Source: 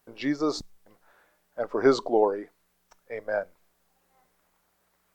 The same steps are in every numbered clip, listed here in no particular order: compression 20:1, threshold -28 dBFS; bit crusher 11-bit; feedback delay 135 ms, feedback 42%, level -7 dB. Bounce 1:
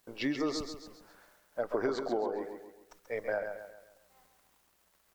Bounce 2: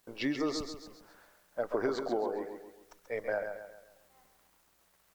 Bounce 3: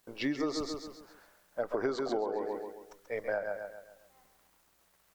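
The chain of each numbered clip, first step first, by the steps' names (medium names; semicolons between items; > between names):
bit crusher > compression > feedback delay; compression > feedback delay > bit crusher; feedback delay > bit crusher > compression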